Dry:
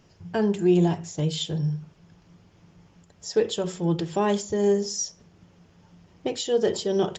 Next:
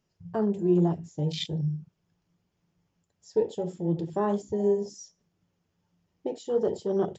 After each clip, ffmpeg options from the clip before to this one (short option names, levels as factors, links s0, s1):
-af "flanger=delay=4.6:depth=9.9:regen=-68:speed=0.39:shape=triangular,highshelf=f=6800:g=7.5,afwtdn=0.02,volume=1.12"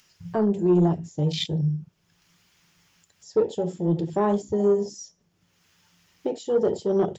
-filter_complex "[0:a]acrossover=split=1300[s0][s1];[s1]acompressor=mode=upward:threshold=0.00224:ratio=2.5[s2];[s0][s2]amix=inputs=2:normalize=0,asoftclip=type=tanh:threshold=0.158,volume=1.78"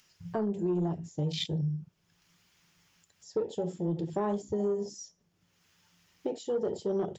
-af "acompressor=threshold=0.0708:ratio=4,volume=0.596"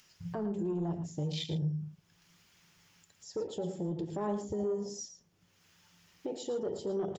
-filter_complex "[0:a]alimiter=level_in=2:limit=0.0631:level=0:latency=1:release=165,volume=0.501,asplit=2[s0][s1];[s1]adelay=110.8,volume=0.316,highshelf=f=4000:g=-2.49[s2];[s0][s2]amix=inputs=2:normalize=0,volume=1.26"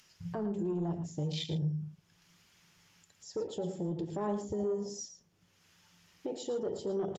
-af "aresample=32000,aresample=44100"